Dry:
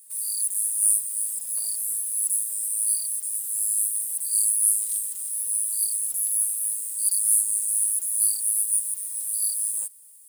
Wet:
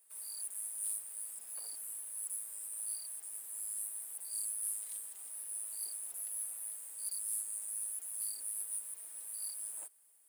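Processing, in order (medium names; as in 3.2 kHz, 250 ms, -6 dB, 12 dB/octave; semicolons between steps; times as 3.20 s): three-band isolator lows -16 dB, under 320 Hz, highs -14 dB, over 2.9 kHz; hard clipper -27.5 dBFS, distortion -18 dB; trim -2.5 dB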